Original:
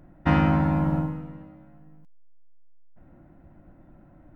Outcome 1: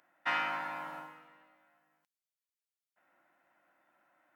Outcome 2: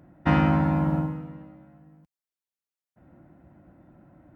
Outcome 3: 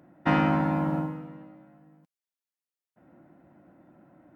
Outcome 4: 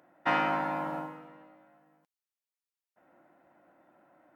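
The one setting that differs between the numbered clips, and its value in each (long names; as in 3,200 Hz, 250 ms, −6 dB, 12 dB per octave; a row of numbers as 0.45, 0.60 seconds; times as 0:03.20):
high-pass filter, corner frequency: 1,400, 77, 200, 570 Hertz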